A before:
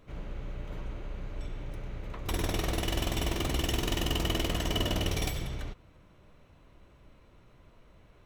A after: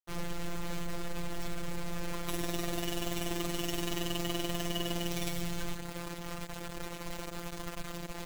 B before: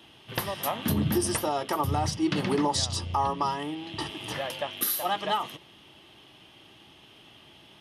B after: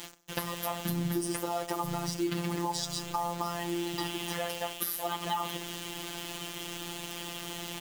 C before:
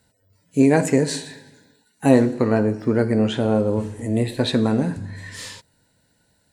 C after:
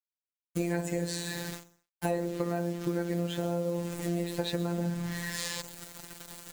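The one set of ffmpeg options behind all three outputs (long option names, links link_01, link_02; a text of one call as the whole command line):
ffmpeg -i in.wav -af "areverse,acompressor=mode=upward:threshold=-23dB:ratio=2.5,areverse,acrusher=bits=5:mix=0:aa=0.000001,afftfilt=real='hypot(re,im)*cos(PI*b)':imag='0':win_size=1024:overlap=0.75,aecho=1:1:64|128|192|256:0.133|0.068|0.0347|0.0177,acompressor=threshold=-27dB:ratio=6" out.wav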